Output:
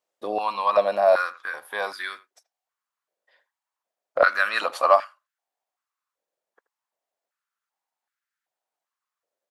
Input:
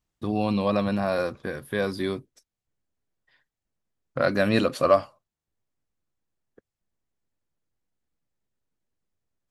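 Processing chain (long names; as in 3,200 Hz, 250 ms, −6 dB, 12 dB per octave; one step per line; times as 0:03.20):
far-end echo of a speakerphone 80 ms, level −17 dB
high-pass on a step sequencer 2.6 Hz 550–1,500 Hz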